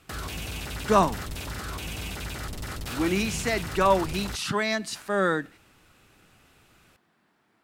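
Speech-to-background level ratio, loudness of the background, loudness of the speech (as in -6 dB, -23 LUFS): 9.0 dB, -35.0 LUFS, -26.0 LUFS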